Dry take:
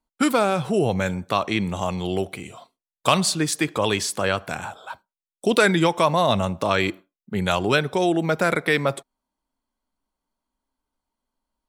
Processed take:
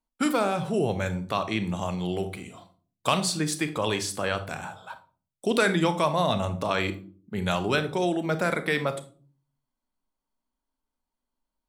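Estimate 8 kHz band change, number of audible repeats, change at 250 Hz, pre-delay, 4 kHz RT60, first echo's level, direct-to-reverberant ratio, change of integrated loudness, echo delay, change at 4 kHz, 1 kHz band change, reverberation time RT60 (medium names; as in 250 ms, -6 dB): -5.0 dB, no echo, -4.5 dB, 28 ms, 0.30 s, no echo, 10.0 dB, -5.0 dB, no echo, -5.0 dB, -5.0 dB, 0.40 s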